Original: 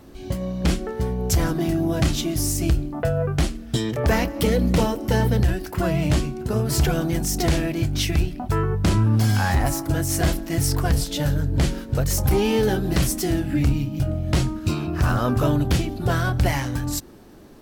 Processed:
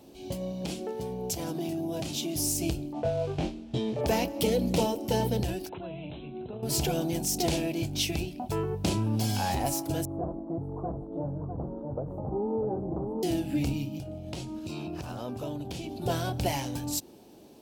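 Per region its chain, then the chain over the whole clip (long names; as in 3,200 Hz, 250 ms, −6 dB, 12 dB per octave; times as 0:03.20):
0:00.52–0:02.35: high-pass filter 80 Hz + downward compressor 4 to 1, threshold −23 dBFS
0:02.93–0:04.01: noise that follows the level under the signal 13 dB + head-to-tape spacing loss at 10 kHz 29 dB + double-tracking delay 23 ms −3 dB
0:05.69–0:06.63: notch filter 1,900 Hz + downward compressor 12 to 1, threshold −28 dBFS + linear-phase brick-wall low-pass 4,100 Hz
0:10.05–0:13.23: elliptic low-pass filter 1,200 Hz, stop band 50 dB + single-tap delay 651 ms −6.5 dB + downward compressor 2.5 to 1, threshold −22 dBFS
0:13.97–0:16.02: high-shelf EQ 12,000 Hz −7 dB + downward compressor, threshold −25 dBFS
whole clip: high-pass filter 260 Hz 6 dB per octave; flat-topped bell 1,500 Hz −11 dB 1.1 octaves; level −3 dB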